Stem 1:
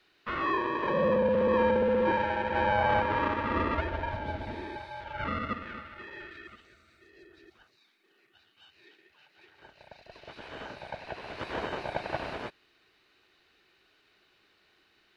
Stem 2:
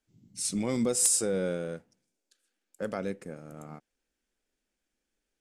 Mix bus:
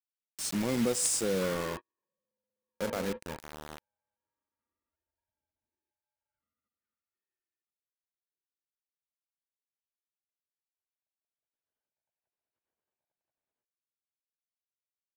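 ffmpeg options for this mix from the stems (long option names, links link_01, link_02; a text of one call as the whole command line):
ffmpeg -i stem1.wav -i stem2.wav -filter_complex "[0:a]acompressor=threshold=-34dB:ratio=6,adelay=1150,volume=-5.5dB[link_01];[1:a]lowpass=7800,acrusher=bits=5:mix=0:aa=0.000001,volume=-1dB,asplit=2[link_02][link_03];[link_03]apad=whole_len=719510[link_04];[link_01][link_04]sidechaingate=range=-52dB:threshold=-38dB:ratio=16:detection=peak[link_05];[link_05][link_02]amix=inputs=2:normalize=0" out.wav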